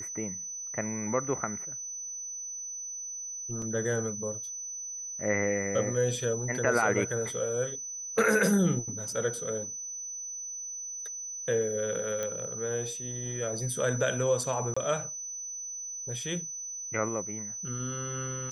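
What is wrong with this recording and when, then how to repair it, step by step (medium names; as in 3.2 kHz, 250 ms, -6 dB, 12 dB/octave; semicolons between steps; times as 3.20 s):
whine 6 kHz -36 dBFS
3.62 s: dropout 3.1 ms
12.23 s: pop -19 dBFS
14.74–14.77 s: dropout 25 ms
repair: de-click; band-stop 6 kHz, Q 30; interpolate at 3.62 s, 3.1 ms; interpolate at 14.74 s, 25 ms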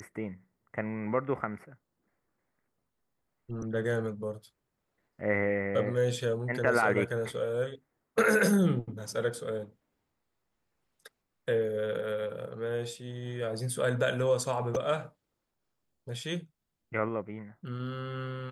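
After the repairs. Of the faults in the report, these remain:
nothing left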